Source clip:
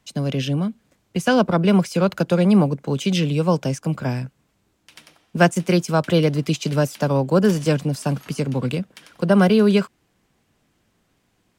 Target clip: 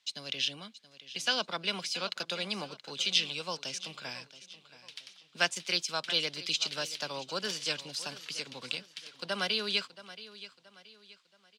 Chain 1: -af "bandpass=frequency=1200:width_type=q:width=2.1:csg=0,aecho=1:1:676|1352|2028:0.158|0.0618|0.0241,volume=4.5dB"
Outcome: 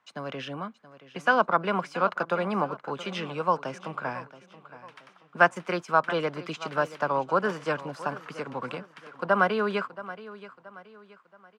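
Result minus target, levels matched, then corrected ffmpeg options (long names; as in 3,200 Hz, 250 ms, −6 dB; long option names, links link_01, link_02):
4,000 Hz band −16.0 dB
-af "bandpass=frequency=4000:width_type=q:width=2.1:csg=0,aecho=1:1:676|1352|2028:0.158|0.0618|0.0241,volume=4.5dB"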